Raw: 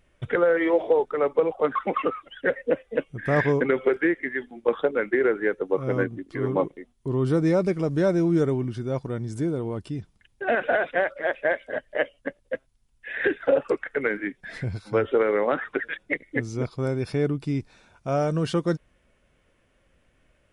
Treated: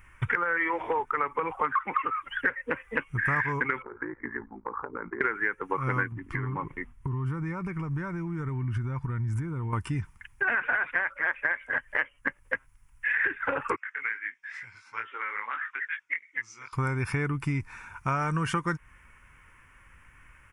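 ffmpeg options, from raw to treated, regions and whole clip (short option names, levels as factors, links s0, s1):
-filter_complex "[0:a]asettb=1/sr,asplit=3[s0][s1][s2];[s0]atrim=end=3.824[s3];[s1]atrim=start=3.82:end=5.21,asetpts=PTS-STARTPTS,afade=t=in:d=0.004:c=qsin,afade=t=out:st=1.386:d=0.004:c=qsin,lowpass=f=1100:w=0.5412,lowpass=f=1100:w=1.3066,acompressor=threshold=0.0355:ratio=16:attack=3.2:release=140:knee=1:detection=peak,aeval=exprs='val(0)*sin(2*PI*28*n/s)':c=same[s4];[s2]atrim=start=5.206[s5];[s3][s4]acrossfade=d=0.004:c1=hsin:c2=qsin[s6];[s6][s5]acrossfade=d=0.004:c1=qsin:c2=hsin,asettb=1/sr,asplit=3[s7][s8][s9];[s7]atrim=end=6.124[s10];[s8]atrim=start=6.12:end=9.73,asetpts=PTS-STARTPTS,afade=t=in:d=0.004:c=qsin,afade=t=out:st=3.606:d=0.004:c=qsin,bass=f=250:g=8,treble=f=4000:g=-7,acompressor=threshold=0.0251:ratio=8:attack=3.2:release=140:knee=1:detection=peak[s11];[s9]atrim=start=9.726[s12];[s10][s11]acrossfade=d=0.004:c1=hsin:c2=qsin[s13];[s13][s12]acrossfade=d=0.004:c1=qsin:c2=hsin,asettb=1/sr,asplit=3[s14][s15][s16];[s14]atrim=end=13.764[s17];[s15]atrim=start=13.76:end=16.73,asetpts=PTS-STARTPTS,afade=t=in:d=0.004:c=qsin,afade=t=out:st=2.966:d=0.004:c=qsin,lowpass=f=6000:w=0.5412,lowpass=f=6000:w=1.3066,aderivative,flanger=delay=17:depth=5.3:speed=2.3[s18];[s16]atrim=start=16.726[s19];[s17][s18]acrossfade=d=0.004:c1=hsin:c2=qsin[s20];[s20][s19]acrossfade=d=0.004:c1=qsin:c2=hsin,firequalizer=gain_entry='entry(100,0);entry(190,-8);entry(330,-10);entry(640,-17);entry(930,6);entry(2300,5);entry(3900,-17);entry(5600,-5);entry(11000,2)':delay=0.05:min_phase=1,acompressor=threshold=0.02:ratio=6,volume=2.82"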